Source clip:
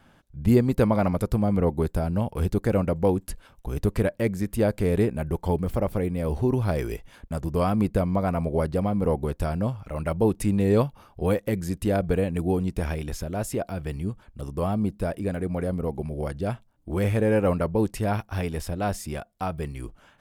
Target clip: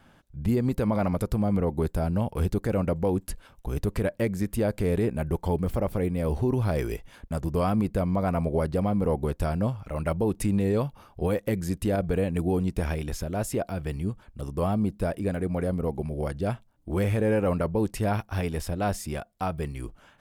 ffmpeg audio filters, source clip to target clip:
-af "alimiter=limit=0.168:level=0:latency=1:release=57"

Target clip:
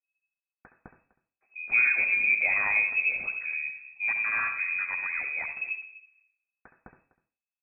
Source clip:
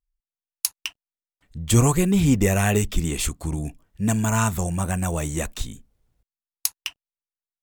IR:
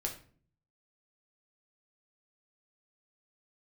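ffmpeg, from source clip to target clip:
-filter_complex "[0:a]aecho=1:1:249:0.119,asplit=2[s0][s1];[1:a]atrim=start_sample=2205,adelay=68[s2];[s1][s2]afir=irnorm=-1:irlink=0,volume=0.355[s3];[s0][s3]amix=inputs=2:normalize=0,lowpass=f=2200:t=q:w=0.5098,lowpass=f=2200:t=q:w=0.6013,lowpass=f=2200:t=q:w=0.9,lowpass=f=2200:t=q:w=2.563,afreqshift=-2600,volume=0.447"

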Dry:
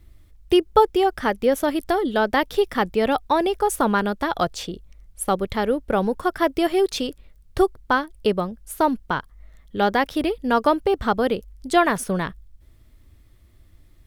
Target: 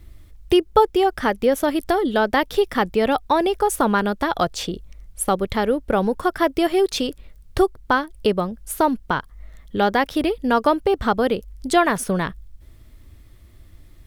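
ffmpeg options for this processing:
-filter_complex "[0:a]asplit=2[s0][s1];[s1]acompressor=threshold=0.0355:ratio=6,volume=1.19[s2];[s0][s2]amix=inputs=2:normalize=0,volume=0.891"

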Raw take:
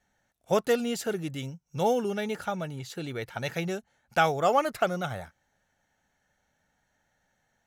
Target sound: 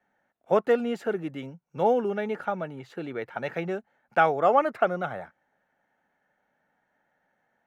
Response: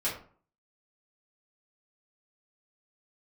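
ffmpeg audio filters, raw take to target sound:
-filter_complex "[0:a]acrossover=split=180 2400:gain=0.112 1 0.0891[s0][s1][s2];[s0][s1][s2]amix=inputs=3:normalize=0,volume=1.41"

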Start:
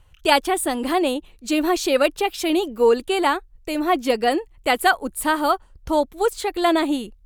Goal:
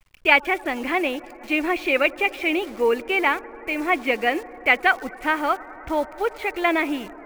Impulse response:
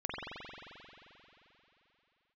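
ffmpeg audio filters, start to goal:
-filter_complex "[0:a]lowpass=f=2300:t=q:w=6.3,acrusher=bits=7:dc=4:mix=0:aa=0.000001,asplit=2[s0][s1];[1:a]atrim=start_sample=2205,asetrate=22491,aresample=44100[s2];[s1][s2]afir=irnorm=-1:irlink=0,volume=0.0531[s3];[s0][s3]amix=inputs=2:normalize=0,volume=0.562"

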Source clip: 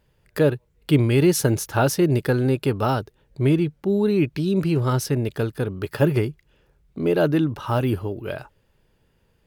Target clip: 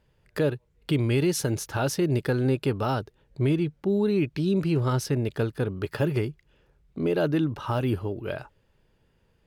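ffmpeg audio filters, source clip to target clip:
-filter_complex "[0:a]highshelf=f=11000:g=-11,acrossover=split=2700[s0][s1];[s0]alimiter=limit=0.2:level=0:latency=1:release=250[s2];[s2][s1]amix=inputs=2:normalize=0,volume=0.794"

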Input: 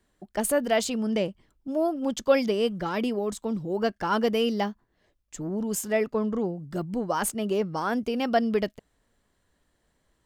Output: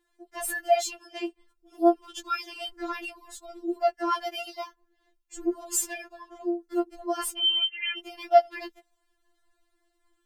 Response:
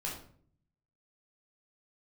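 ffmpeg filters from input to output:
-filter_complex "[0:a]asplit=3[s0][s1][s2];[s0]afade=t=out:st=2.64:d=0.02[s3];[s1]lowshelf=f=260:t=q:w=3:g=11,afade=t=in:st=2.64:d=0.02,afade=t=out:st=3.55:d=0.02[s4];[s2]afade=t=in:st=3.55:d=0.02[s5];[s3][s4][s5]amix=inputs=3:normalize=0,asettb=1/sr,asplit=3[s6][s7][s8];[s6]atrim=end=5.374[s9];[s7]atrim=start=5.37:end=5.93,asetpts=PTS-STARTPTS,afade=t=in:d=0.004:c=qsin,afade=t=out:st=0.556:d=0.004:c=qsin,acontrast=69[s10];[s8]atrim=start=5.926[s11];[s9][s10]acrossfade=d=0.004:c1=hsin:c2=qsin[s12];[s12][s11]acrossfade=d=0.004:c1=qsin:c2=hsin,asettb=1/sr,asplit=3[s13][s14][s15];[s13]atrim=end=7.384[s16];[s14]atrim=start=7.38:end=7.98,asetpts=PTS-STARTPTS,afade=t=in:d=0.004:c=qsin,afade=t=out:st=0.596:d=0.004:c=qsin,lowpass=f=2800:t=q:w=0.5098,lowpass=f=2800:t=q:w=0.6013,lowpass=f=2800:t=q:w=0.9,lowpass=f=2800:t=q:w=2.563,afreqshift=-3300[s17];[s15]atrim=start=7.976[s18];[s16][s17]acrossfade=d=0.004:c1=hsin:c2=qsin[s19];[s19][s18]acrossfade=d=0.004:c1=qsin:c2=hsin,afftfilt=real='re*4*eq(mod(b,16),0)':imag='im*4*eq(mod(b,16),0)':win_size=2048:overlap=0.75"

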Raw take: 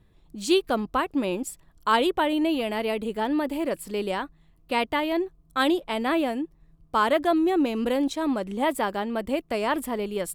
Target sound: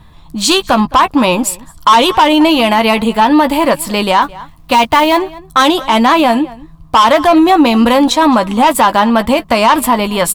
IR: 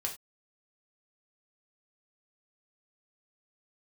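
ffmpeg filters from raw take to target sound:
-filter_complex "[0:a]equalizer=f=400:t=o:w=0.67:g=-11,equalizer=f=1000:t=o:w=0.67:g=10,equalizer=f=4000:t=o:w=0.67:g=4,asoftclip=type=tanh:threshold=0.126,asettb=1/sr,asplit=3[s0][s1][s2];[s0]atrim=end=4.224[s3];[s1]atrim=start=4.22:end=5.17,asetpts=PTS-STARTPTS,afade=t=in:d=0.004:c=qsin,afade=t=out:st=0.946:d=0.004:c=qsin,acrusher=bits=6:mode=log:mix=0:aa=0.000001[s4];[s2]atrim=start=5.166[s5];[s3][s4]acrossfade=d=0.004:c1=hsin:c2=qsin[s6];[s6][s5]acrossfade=d=0.004:c1=qsin:c2=hsin,asplit=2[s7][s8];[s8]adelay=13,volume=0.335[s9];[s7][s9]amix=inputs=2:normalize=0,asplit=2[s10][s11];[s11]adelay=215.7,volume=0.0794,highshelf=f=4000:g=-4.85[s12];[s10][s12]amix=inputs=2:normalize=0,alimiter=level_in=10:limit=0.891:release=50:level=0:latency=1,volume=0.891"

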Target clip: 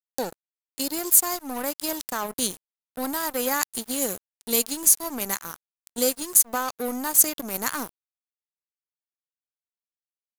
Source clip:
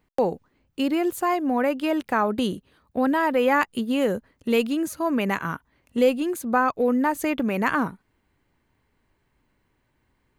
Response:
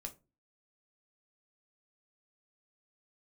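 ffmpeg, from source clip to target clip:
-af "aexciter=amount=12.4:drive=7:freq=4100,aeval=exprs='sgn(val(0))*max(abs(val(0))-0.0501,0)':c=same,volume=0.631"

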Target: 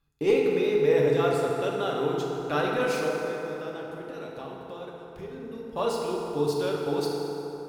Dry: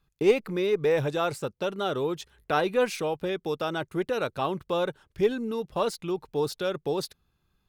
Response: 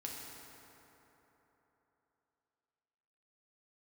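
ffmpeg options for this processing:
-filter_complex "[0:a]asettb=1/sr,asplit=3[s0][s1][s2];[s0]atrim=end=3.074[s3];[s1]atrim=start=3.07:end=5.73,asetpts=PTS-STARTPTS,afade=t=in:d=0.004:c=qsin,afade=t=out:st=2.656:d=0.004:c=qsin,acompressor=threshold=0.0141:ratio=6[s4];[s2]atrim=start=5.726[s5];[s3][s4]acrossfade=d=0.004:c1=hsin:c2=qsin[s6];[s6][s5]acrossfade=d=0.004:c1=qsin:c2=hsin[s7];[1:a]atrim=start_sample=2205[s8];[s7][s8]afir=irnorm=-1:irlink=0,volume=1.19"

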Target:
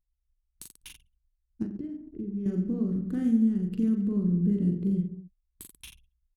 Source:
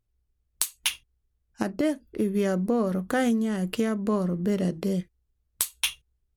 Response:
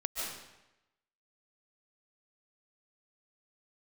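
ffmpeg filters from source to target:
-filter_complex "[0:a]asettb=1/sr,asplit=3[s0][s1][s2];[s0]atrim=end=4.024[s3];[s1]atrim=start=4.02:end=5.78,asetpts=PTS-STARTPTS,afade=t=in:d=0.004:c=qsin,afade=t=out:st=1.756:d=0.004:c=qsin,equalizer=f=5700:w=3:g=-10[s4];[s2]atrim=start=5.776[s5];[s3][s4]acrossfade=d=0.004:c1=hsin:c2=qsin[s6];[s6][s5]acrossfade=d=0.004:c1=qsin:c2=hsin,aecho=1:1:40|86|138.9|199.7|269.7:0.631|0.398|0.251|0.158|0.1,asettb=1/sr,asplit=3[s7][s8][s9];[s7]atrim=end=1.654[s10];[s8]atrim=start=1.65:end=2.46,asetpts=PTS-STARTPTS,afade=t=in:d=0.004:c=qsin,afade=t=out:st=0.806:d=0.004:c=qsin,acompressor=threshold=0.0282:ratio=3[s11];[s9]atrim=start=2.456[s12];[s10][s11]acrossfade=d=0.004:c1=hsin:c2=qsin[s13];[s13][s12]acrossfade=d=0.004:c1=qsin:c2=hsin,firequalizer=gain_entry='entry(180,0);entry(380,-7);entry(570,-27);entry(1800,-23);entry(8300,-20)':delay=0.05:min_phase=1,anlmdn=0.00398"

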